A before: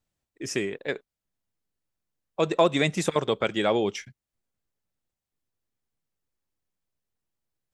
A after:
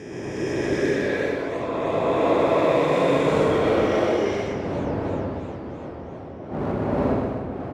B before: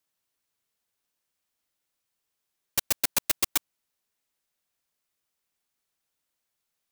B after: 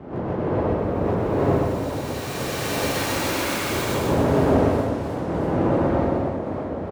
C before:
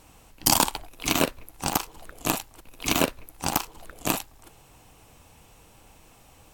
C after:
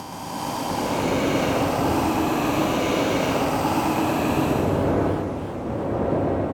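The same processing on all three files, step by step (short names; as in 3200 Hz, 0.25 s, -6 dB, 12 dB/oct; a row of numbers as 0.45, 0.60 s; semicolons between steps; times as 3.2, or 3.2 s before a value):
spectral swells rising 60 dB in 2.96 s; wind noise 500 Hz -29 dBFS; compressor 10:1, threshold -23 dBFS; LPF 1100 Hz 6 dB/oct; AGC gain up to 4.5 dB; overloaded stage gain 18.5 dB; HPF 79 Hz; feedback echo 0.125 s, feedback 43%, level -3 dB; non-linear reverb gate 0.45 s rising, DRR -5.5 dB; warbling echo 0.306 s, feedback 70%, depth 186 cents, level -13 dB; match loudness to -23 LUFS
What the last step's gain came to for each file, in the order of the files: -4.0, 0.0, -4.0 dB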